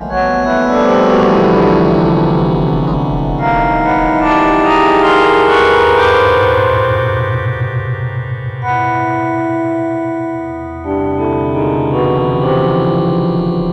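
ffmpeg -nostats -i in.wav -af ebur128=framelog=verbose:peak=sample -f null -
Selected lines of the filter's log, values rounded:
Integrated loudness:
  I:         -12.4 LUFS
  Threshold: -22.5 LUFS
Loudness range:
  LRA:         6.8 LU
  Threshold: -32.6 LUFS
  LRA low:   -16.6 LUFS
  LRA high:   -9.9 LUFS
Sample peak:
  Peak:       -1.6 dBFS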